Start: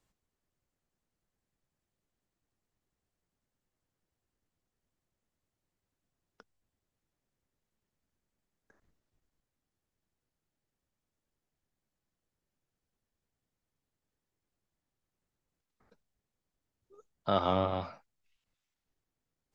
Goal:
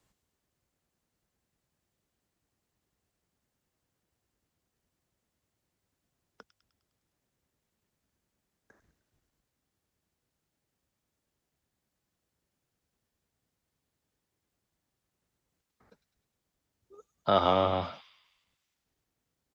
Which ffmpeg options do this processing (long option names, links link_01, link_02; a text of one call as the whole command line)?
ffmpeg -i in.wav -filter_complex "[0:a]highpass=41,acrossover=split=320|2000[link_01][link_02][link_03];[link_01]alimiter=level_in=11.5dB:limit=-24dB:level=0:latency=1,volume=-11.5dB[link_04];[link_03]asplit=8[link_05][link_06][link_07][link_08][link_09][link_10][link_11][link_12];[link_06]adelay=102,afreqshift=-35,volume=-7dB[link_13];[link_07]adelay=204,afreqshift=-70,volume=-12dB[link_14];[link_08]adelay=306,afreqshift=-105,volume=-17.1dB[link_15];[link_09]adelay=408,afreqshift=-140,volume=-22.1dB[link_16];[link_10]adelay=510,afreqshift=-175,volume=-27.1dB[link_17];[link_11]adelay=612,afreqshift=-210,volume=-32.2dB[link_18];[link_12]adelay=714,afreqshift=-245,volume=-37.2dB[link_19];[link_05][link_13][link_14][link_15][link_16][link_17][link_18][link_19]amix=inputs=8:normalize=0[link_20];[link_04][link_02][link_20]amix=inputs=3:normalize=0,volume=5dB" out.wav